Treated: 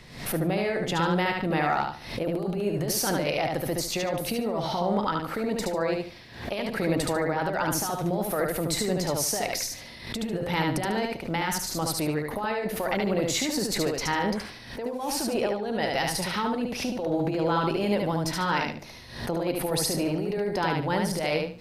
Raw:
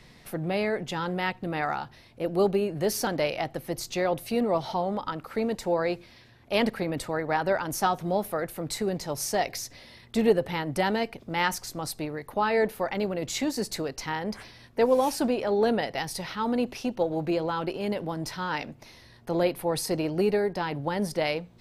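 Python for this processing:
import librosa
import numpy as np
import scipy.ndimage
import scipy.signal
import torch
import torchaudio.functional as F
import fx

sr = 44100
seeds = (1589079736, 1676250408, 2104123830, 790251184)

y = fx.over_compress(x, sr, threshold_db=-29.0, ratio=-1.0)
y = fx.echo_feedback(y, sr, ms=73, feedback_pct=26, wet_db=-3.0)
y = fx.pre_swell(y, sr, db_per_s=88.0)
y = F.gain(torch.from_numpy(y), 1.0).numpy()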